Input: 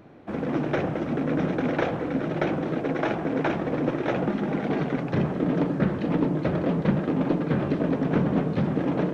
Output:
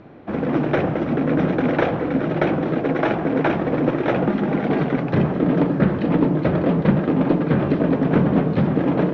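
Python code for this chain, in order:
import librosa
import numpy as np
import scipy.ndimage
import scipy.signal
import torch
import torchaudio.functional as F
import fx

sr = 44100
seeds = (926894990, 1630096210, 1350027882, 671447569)

y = scipy.signal.sosfilt(scipy.signal.bessel(4, 3900.0, 'lowpass', norm='mag', fs=sr, output='sos'), x)
y = y * 10.0 ** (6.0 / 20.0)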